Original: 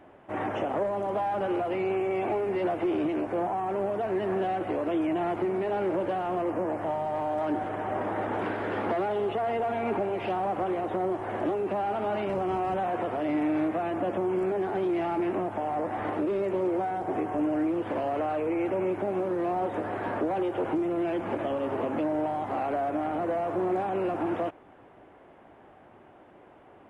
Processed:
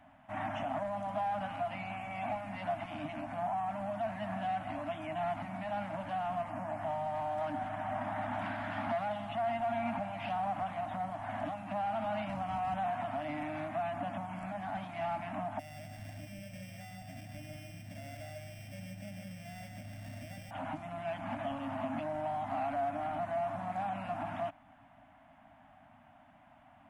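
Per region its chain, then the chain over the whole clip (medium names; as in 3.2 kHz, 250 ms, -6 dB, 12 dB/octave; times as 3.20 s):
15.59–20.51 s: sorted samples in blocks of 16 samples + FFT filter 100 Hz 0 dB, 200 Hz -4 dB, 290 Hz -13 dB, 560 Hz -6 dB, 960 Hz -27 dB, 1.7 kHz -15 dB, 3.4 kHz -19 dB + delay 145 ms -6 dB
whole clip: elliptic band-stop 270–640 Hz, stop band 40 dB; peaking EQ 1.2 kHz -2 dB; trim -3 dB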